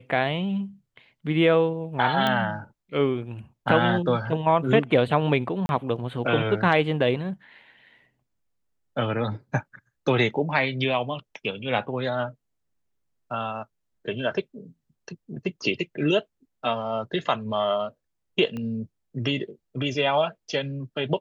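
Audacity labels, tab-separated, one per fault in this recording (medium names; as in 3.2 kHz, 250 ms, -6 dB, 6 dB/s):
2.270000	2.270000	pop -11 dBFS
5.660000	5.690000	dropout 31 ms
18.570000	18.570000	pop -22 dBFS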